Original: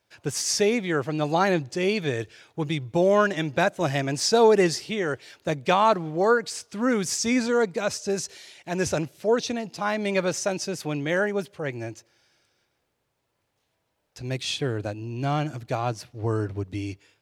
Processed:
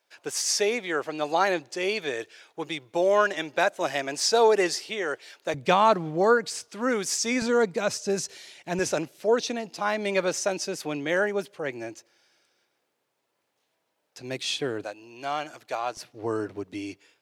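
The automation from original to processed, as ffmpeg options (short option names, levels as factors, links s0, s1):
-af "asetnsamples=n=441:p=0,asendcmd='5.54 highpass f 110;6.68 highpass f 310;7.42 highpass f 120;8.79 highpass f 250;14.84 highpass f 590;15.97 highpass f 250',highpass=420"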